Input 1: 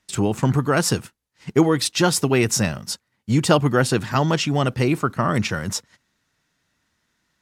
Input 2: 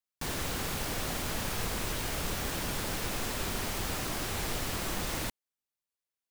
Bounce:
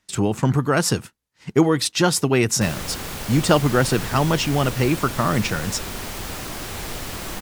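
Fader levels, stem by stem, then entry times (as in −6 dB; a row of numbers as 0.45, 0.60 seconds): 0.0, +3.0 decibels; 0.00, 2.40 seconds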